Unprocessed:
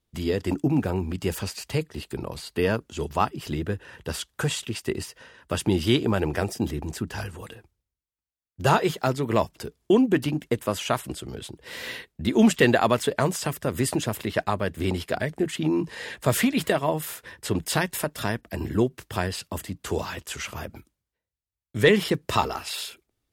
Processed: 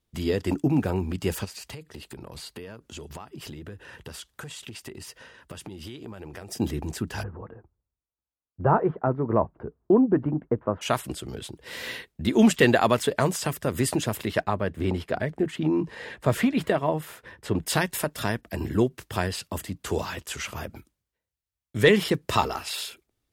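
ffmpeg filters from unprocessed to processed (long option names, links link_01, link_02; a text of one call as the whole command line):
ffmpeg -i in.wav -filter_complex "[0:a]asplit=3[link_01][link_02][link_03];[link_01]afade=type=out:start_time=1.44:duration=0.02[link_04];[link_02]acompressor=threshold=-35dB:ratio=20:attack=3.2:release=140:knee=1:detection=peak,afade=type=in:start_time=1.44:duration=0.02,afade=type=out:start_time=6.51:duration=0.02[link_05];[link_03]afade=type=in:start_time=6.51:duration=0.02[link_06];[link_04][link_05][link_06]amix=inputs=3:normalize=0,asplit=3[link_07][link_08][link_09];[link_07]afade=type=out:start_time=7.22:duration=0.02[link_10];[link_08]lowpass=frequency=1300:width=0.5412,lowpass=frequency=1300:width=1.3066,afade=type=in:start_time=7.22:duration=0.02,afade=type=out:start_time=10.81:duration=0.02[link_11];[link_09]afade=type=in:start_time=10.81:duration=0.02[link_12];[link_10][link_11][link_12]amix=inputs=3:normalize=0,asettb=1/sr,asplit=3[link_13][link_14][link_15];[link_13]atrim=end=14.404[link_16];[link_14]atrim=start=14.4:end=17.67,asetpts=PTS-STARTPTS,afade=type=in:duration=0.004:curve=qsin,afade=type=out:start_time=3.266:duration=0.004:curve=qsin,highshelf=frequency=3300:gain=-12[link_17];[link_15]atrim=start=17.666[link_18];[link_16][link_17]acrossfade=duration=0.004:curve1=hsin:curve2=qsin[link_19];[link_19][link_18]acrossfade=duration=0.004:curve1=qsin:curve2=hsin" out.wav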